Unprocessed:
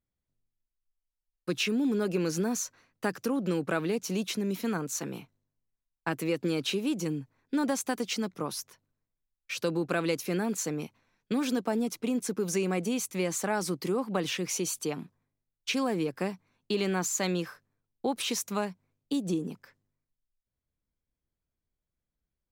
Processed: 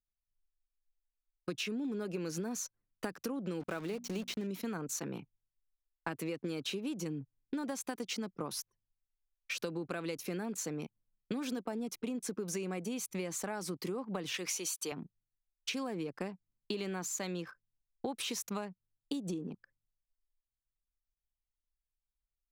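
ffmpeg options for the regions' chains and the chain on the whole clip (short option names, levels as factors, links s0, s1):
-filter_complex "[0:a]asettb=1/sr,asplit=3[s0][s1][s2];[s0]atrim=end=3.604[s3];[s1]atrim=start=3.6:end=4.47,asetpts=PTS-STARTPTS,afade=t=in:d=0.004:c=qsin,afade=t=out:st=0.866:d=0.004:c=qsin,acrossover=split=6600[s4][s5];[s5]acompressor=threshold=0.00224:ratio=4:attack=1:release=60[s6];[s4][s6]amix=inputs=2:normalize=0,aeval=exprs='val(0)*gte(abs(val(0)),0.0112)':c=same,bandreject=f=60:t=h:w=6,bandreject=f=120:t=h:w=6,bandreject=f=180:t=h:w=6,bandreject=f=240:t=h:w=6[s7];[s2]atrim=start=4.466[s8];[s3][s7]acrossfade=d=0.004:c1=hsin:c2=qsin[s9];[s9][s8]acrossfade=d=0.004:c1=qsin:c2=hsin,asettb=1/sr,asplit=3[s10][s11][s12];[s10]atrim=end=14.344[s13];[s11]atrim=start=14.34:end=14.92,asetpts=PTS-STARTPTS,afade=t=in:d=0.004:c=qsin,afade=t=out:st=0.576:d=0.004:c=qsin,highpass=f=850:p=1,acontrast=67[s14];[s12]atrim=start=14.916[s15];[s13][s14]acrossfade=d=0.004:c1=hsin:c2=qsin[s16];[s16][s15]acrossfade=d=0.004:c1=qsin:c2=hsin,anlmdn=0.0631,acompressor=threshold=0.0158:ratio=6,volume=1.12"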